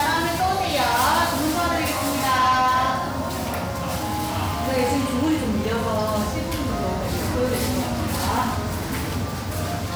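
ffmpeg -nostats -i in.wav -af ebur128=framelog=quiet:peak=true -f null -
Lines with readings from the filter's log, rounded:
Integrated loudness:
  I:         -22.7 LUFS
  Threshold: -32.7 LUFS
Loudness range:
  LRA:         3.8 LU
  Threshold: -42.8 LUFS
  LRA low:   -24.5 LUFS
  LRA high:  -20.6 LUFS
True peak:
  Peak:      -13.6 dBFS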